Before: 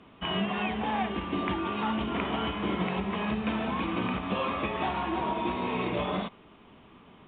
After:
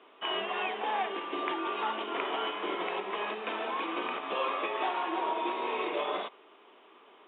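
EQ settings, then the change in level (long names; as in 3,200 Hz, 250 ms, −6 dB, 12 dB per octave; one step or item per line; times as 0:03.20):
elliptic band-pass filter 370–3,700 Hz, stop band 60 dB
0.0 dB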